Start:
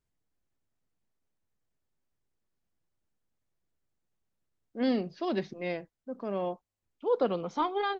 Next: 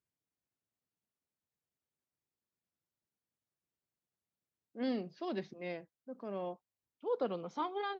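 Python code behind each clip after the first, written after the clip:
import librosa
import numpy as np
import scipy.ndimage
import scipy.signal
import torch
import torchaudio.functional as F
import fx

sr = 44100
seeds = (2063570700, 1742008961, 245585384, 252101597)

y = scipy.signal.sosfilt(scipy.signal.butter(2, 97.0, 'highpass', fs=sr, output='sos'), x)
y = y * librosa.db_to_amplitude(-7.5)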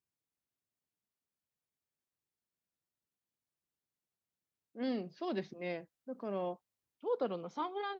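y = fx.rider(x, sr, range_db=10, speed_s=2.0)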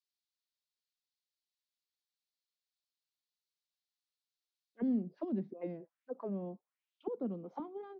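y = fx.auto_wah(x, sr, base_hz=220.0, top_hz=4200.0, q=2.8, full_db=-35.5, direction='down')
y = y * librosa.db_to_amplitude(7.0)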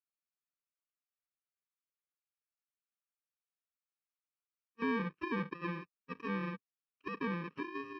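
y = fx.bit_reversed(x, sr, seeds[0], block=64)
y = fx.leveller(y, sr, passes=3)
y = fx.cabinet(y, sr, low_hz=120.0, low_slope=12, high_hz=2600.0, hz=(120.0, 220.0, 350.0, 540.0, 860.0, 1200.0), db=(-8, -7, -6, -4, -10, 6))
y = y * librosa.db_to_amplitude(1.0)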